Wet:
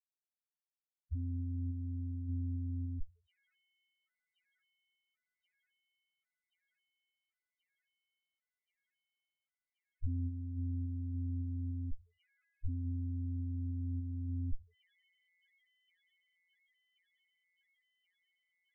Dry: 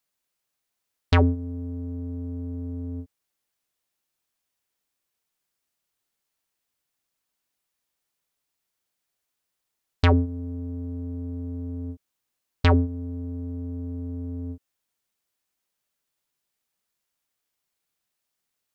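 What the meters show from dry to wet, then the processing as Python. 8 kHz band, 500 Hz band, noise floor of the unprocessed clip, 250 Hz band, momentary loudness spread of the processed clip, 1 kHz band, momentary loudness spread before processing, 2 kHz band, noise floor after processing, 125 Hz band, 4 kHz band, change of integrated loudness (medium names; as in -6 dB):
no reading, under -40 dB, -82 dBFS, -13.5 dB, 6 LU, under -40 dB, 15 LU, under -35 dB, under -85 dBFS, -10.5 dB, under -35 dB, -12.0 dB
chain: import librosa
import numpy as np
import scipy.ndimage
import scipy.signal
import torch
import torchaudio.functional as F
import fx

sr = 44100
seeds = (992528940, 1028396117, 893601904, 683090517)

p1 = fx.lowpass_res(x, sr, hz=3200.0, q=3.1)
p2 = fx.schmitt(p1, sr, flips_db=-28.5)
p3 = fx.peak_eq(p2, sr, hz=94.0, db=-6.0, octaves=0.25)
p4 = fx.rev_fdn(p3, sr, rt60_s=0.56, lf_ratio=0.8, hf_ratio=0.55, size_ms=32.0, drr_db=18.0)
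p5 = fx.tremolo_random(p4, sr, seeds[0], hz=3.5, depth_pct=55)
p6 = p5 + fx.echo_wet_highpass(p5, sr, ms=1079, feedback_pct=81, hz=2200.0, wet_db=-21.5, dry=0)
p7 = fx.spec_topn(p6, sr, count=2)
p8 = fx.low_shelf(p7, sr, hz=61.0, db=11.0)
p9 = fx.rider(p8, sr, range_db=10, speed_s=0.5)
y = F.gain(torch.from_numpy(p9), 1.5).numpy()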